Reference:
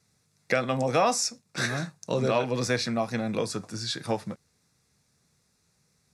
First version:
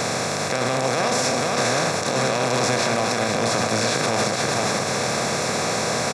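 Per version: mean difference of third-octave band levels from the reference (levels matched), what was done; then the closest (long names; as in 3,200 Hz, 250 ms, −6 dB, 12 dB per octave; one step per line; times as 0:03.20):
11.0 dB: compressor on every frequency bin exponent 0.2
on a send: single-tap delay 478 ms −6 dB
on the sum: brickwall limiter −13.5 dBFS, peak gain reduction 11.5 dB
level +2 dB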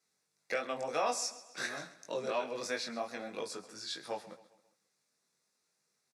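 5.0 dB: high-pass filter 360 Hz 12 dB per octave
chorus effect 2.9 Hz, delay 19.5 ms, depth 2.1 ms
repeating echo 134 ms, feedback 47%, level −17 dB
level −5.5 dB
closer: second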